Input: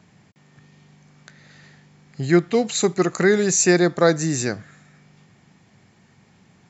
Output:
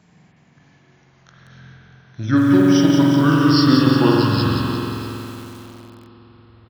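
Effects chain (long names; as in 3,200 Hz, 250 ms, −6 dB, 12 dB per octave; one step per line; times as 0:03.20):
pitch glide at a constant tempo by −10 semitones starting unshifted
on a send: single-tap delay 636 ms −17.5 dB
on the sum: spring reverb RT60 3.6 s, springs 46 ms, chirp 70 ms, DRR −3.5 dB
feedback echo at a low word length 177 ms, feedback 55%, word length 6 bits, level −5.5 dB
level −1.5 dB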